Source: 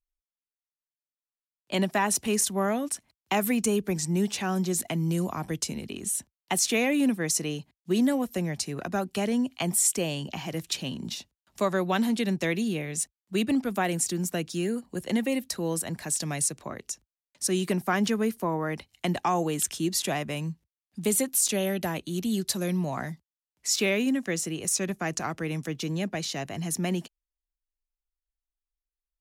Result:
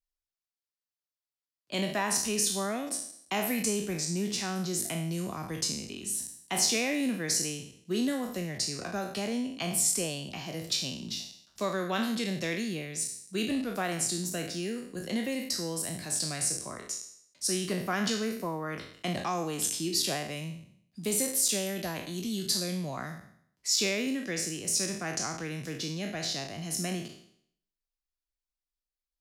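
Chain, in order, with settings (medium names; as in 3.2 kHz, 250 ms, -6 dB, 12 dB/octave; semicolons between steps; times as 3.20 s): spectral sustain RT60 0.64 s; peaking EQ 4.8 kHz +7 dB 0.65 oct; band-stop 880 Hz, Q 12; trim -6.5 dB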